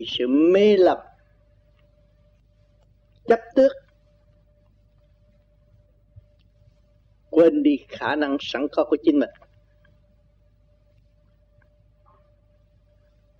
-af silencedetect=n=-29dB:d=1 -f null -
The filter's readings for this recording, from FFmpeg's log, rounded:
silence_start: 0.99
silence_end: 3.29 | silence_duration: 2.30
silence_start: 3.72
silence_end: 7.33 | silence_duration: 3.61
silence_start: 9.25
silence_end: 13.39 | silence_duration: 4.14